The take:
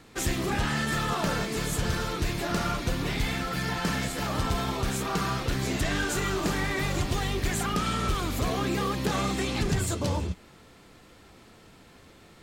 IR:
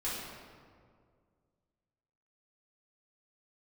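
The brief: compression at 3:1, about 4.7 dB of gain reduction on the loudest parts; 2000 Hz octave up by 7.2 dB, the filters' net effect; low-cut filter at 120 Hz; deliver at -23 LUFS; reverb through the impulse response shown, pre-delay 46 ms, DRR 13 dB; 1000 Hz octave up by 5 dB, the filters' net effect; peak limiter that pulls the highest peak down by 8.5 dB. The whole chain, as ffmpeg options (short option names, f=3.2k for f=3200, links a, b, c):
-filter_complex "[0:a]highpass=120,equalizer=f=1k:t=o:g=4,equalizer=f=2k:t=o:g=7.5,acompressor=threshold=-27dB:ratio=3,alimiter=limit=-22.5dB:level=0:latency=1,asplit=2[a][b];[1:a]atrim=start_sample=2205,adelay=46[c];[b][c]afir=irnorm=-1:irlink=0,volume=-17.5dB[d];[a][d]amix=inputs=2:normalize=0,volume=8dB"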